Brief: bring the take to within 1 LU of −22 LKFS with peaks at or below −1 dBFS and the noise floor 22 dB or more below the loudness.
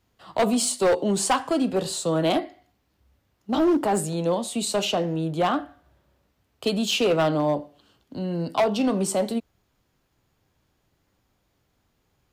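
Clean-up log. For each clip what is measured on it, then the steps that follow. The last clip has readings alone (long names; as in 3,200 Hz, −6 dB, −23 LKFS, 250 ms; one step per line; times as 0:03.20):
share of clipped samples 1.4%; peaks flattened at −16.0 dBFS; integrated loudness −24.0 LKFS; sample peak −16.0 dBFS; target loudness −22.0 LKFS
→ clipped peaks rebuilt −16 dBFS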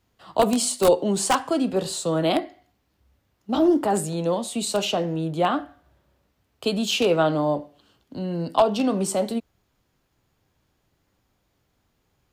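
share of clipped samples 0.0%; integrated loudness −23.5 LKFS; sample peak −7.0 dBFS; target loudness −22.0 LKFS
→ level +1.5 dB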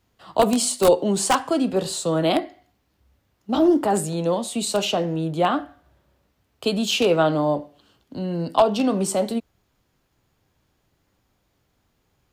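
integrated loudness −22.0 LKFS; sample peak −5.5 dBFS; background noise floor −70 dBFS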